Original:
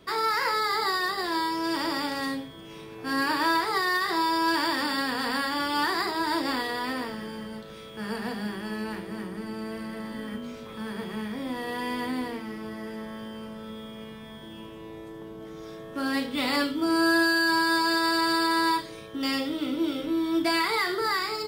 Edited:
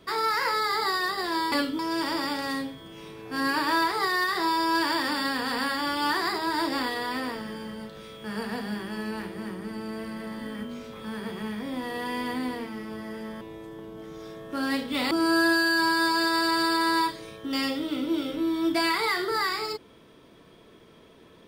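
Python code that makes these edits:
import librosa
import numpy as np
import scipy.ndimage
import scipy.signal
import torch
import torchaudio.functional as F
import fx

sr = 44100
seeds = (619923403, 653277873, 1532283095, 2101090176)

y = fx.edit(x, sr, fx.cut(start_s=13.14, length_s=1.7),
    fx.move(start_s=16.54, length_s=0.27, to_s=1.52), tone=tone)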